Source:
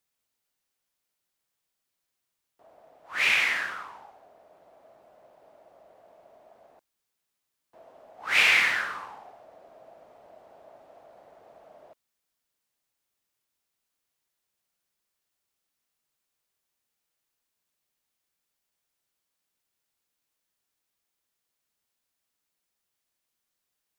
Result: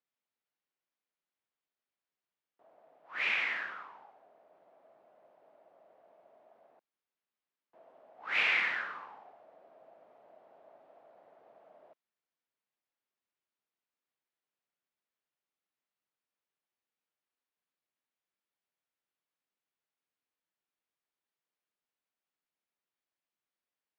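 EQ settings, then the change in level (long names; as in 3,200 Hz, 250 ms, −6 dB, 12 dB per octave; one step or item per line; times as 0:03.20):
band-pass filter 170–3,000 Hz
−7.0 dB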